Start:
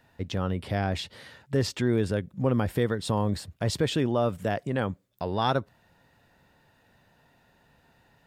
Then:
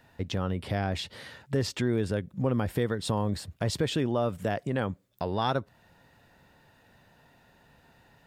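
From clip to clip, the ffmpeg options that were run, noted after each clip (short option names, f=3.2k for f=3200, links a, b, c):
-af "acompressor=threshold=-34dB:ratio=1.5,volume=2.5dB"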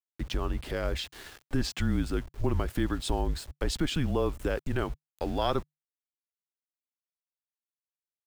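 -af "aeval=exprs='val(0)*gte(abs(val(0)),0.00631)':c=same,afreqshift=-150"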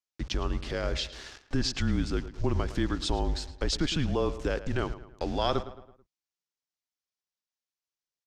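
-filter_complex "[0:a]lowpass=f=5.8k:t=q:w=2,asplit=2[a][b];[b]adelay=109,lowpass=f=3.1k:p=1,volume=-13.5dB,asplit=2[c][d];[d]adelay=109,lowpass=f=3.1k:p=1,volume=0.46,asplit=2[e][f];[f]adelay=109,lowpass=f=3.1k:p=1,volume=0.46,asplit=2[g][h];[h]adelay=109,lowpass=f=3.1k:p=1,volume=0.46[i];[a][c][e][g][i]amix=inputs=5:normalize=0"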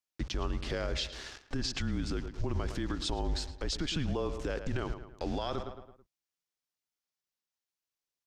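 -af "alimiter=limit=-24dB:level=0:latency=1:release=65"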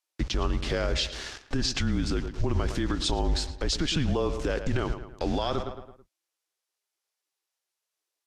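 -af "volume=6.5dB" -ar 32000 -c:a libvorbis -b:a 48k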